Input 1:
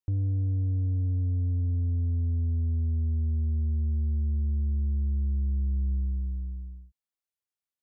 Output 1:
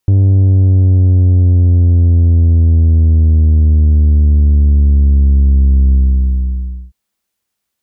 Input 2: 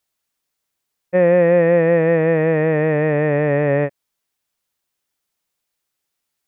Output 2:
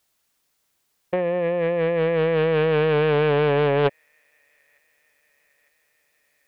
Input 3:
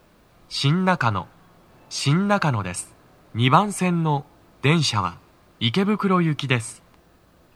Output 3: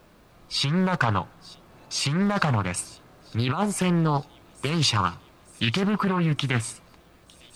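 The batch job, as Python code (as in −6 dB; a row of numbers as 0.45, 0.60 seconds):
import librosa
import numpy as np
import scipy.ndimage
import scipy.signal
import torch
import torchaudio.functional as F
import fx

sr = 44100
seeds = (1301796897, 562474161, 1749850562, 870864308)

y = fx.over_compress(x, sr, threshold_db=-21.0, ratio=-1.0)
y = fx.echo_wet_highpass(y, sr, ms=904, feedback_pct=66, hz=4500.0, wet_db=-17)
y = fx.doppler_dist(y, sr, depth_ms=0.46)
y = y * 10.0 ** (-6 / 20.0) / np.max(np.abs(y))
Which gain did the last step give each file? +18.0, +1.0, −1.0 decibels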